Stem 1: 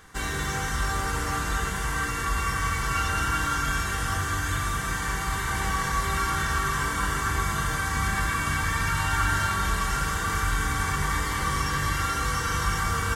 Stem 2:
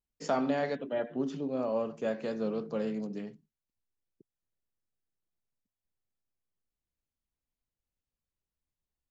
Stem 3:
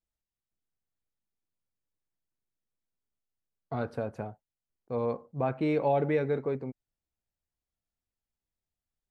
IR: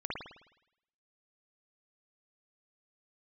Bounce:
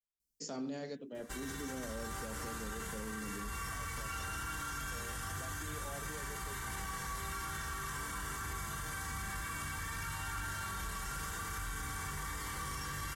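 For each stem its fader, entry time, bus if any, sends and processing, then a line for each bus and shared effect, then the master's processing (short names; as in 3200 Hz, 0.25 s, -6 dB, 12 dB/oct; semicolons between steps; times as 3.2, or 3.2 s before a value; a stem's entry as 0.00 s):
-10.5 dB, 1.15 s, no send, high shelf 7700 Hz +10 dB; soft clip -16 dBFS, distortion -23 dB
-2.0 dB, 0.20 s, no send, high shelf 2500 Hz +11.5 dB; tremolo 0.61 Hz, depth 49%; band shelf 1500 Hz -10.5 dB 3 oct
-18.5 dB, 0.00 s, no send, dry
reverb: off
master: limiter -33 dBFS, peak gain reduction 9.5 dB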